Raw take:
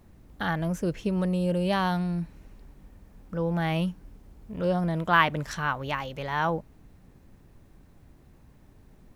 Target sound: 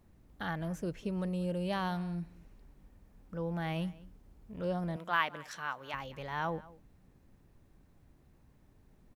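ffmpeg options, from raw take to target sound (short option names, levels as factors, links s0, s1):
-filter_complex "[0:a]asettb=1/sr,asplit=3[s0][s1][s2];[s0]atrim=end=4.964[s3];[s1]atrim=start=4.96:end=5.94,asetpts=PTS-STARTPTS,afade=t=in:d=0.004:c=qsin,afade=t=out:st=0.976:d=0.004:c=qsin,highpass=f=600:p=1[s4];[s2]atrim=start=5.936[s5];[s3][s4]acrossfade=d=0.004:c1=hsin:c2=qsin[s6];[s6][s5]acrossfade=d=0.004:c1=qsin:c2=hsin,asplit=2[s7][s8];[s8]adelay=198.3,volume=0.1,highshelf=f=4000:g=-4.46[s9];[s7][s9]amix=inputs=2:normalize=0,volume=0.376"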